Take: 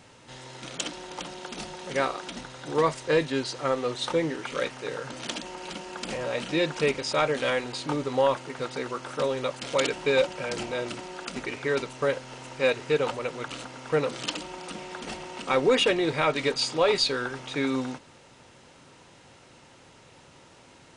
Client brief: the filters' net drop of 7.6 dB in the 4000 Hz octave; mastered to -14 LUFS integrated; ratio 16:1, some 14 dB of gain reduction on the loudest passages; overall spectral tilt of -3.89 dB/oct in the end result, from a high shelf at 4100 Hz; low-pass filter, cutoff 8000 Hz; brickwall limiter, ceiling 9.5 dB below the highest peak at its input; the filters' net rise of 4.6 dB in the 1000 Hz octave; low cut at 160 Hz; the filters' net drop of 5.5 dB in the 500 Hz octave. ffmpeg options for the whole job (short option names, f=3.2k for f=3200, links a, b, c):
-af "highpass=160,lowpass=8k,equalizer=f=500:t=o:g=-8,equalizer=f=1k:t=o:g=8.5,equalizer=f=4k:t=o:g=-8.5,highshelf=f=4.1k:g=-3,acompressor=threshold=-31dB:ratio=16,volume=25.5dB,alimiter=limit=-3dB:level=0:latency=1"